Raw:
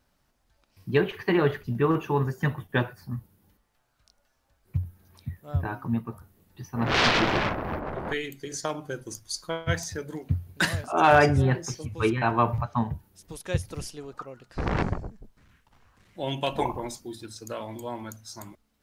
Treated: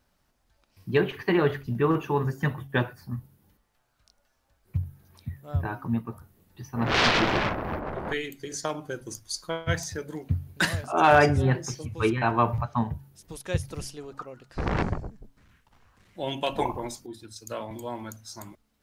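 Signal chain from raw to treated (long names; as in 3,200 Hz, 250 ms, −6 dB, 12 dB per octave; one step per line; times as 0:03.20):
hum removal 137.5 Hz, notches 2
0:17.06–0:17.71: multiband upward and downward expander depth 100%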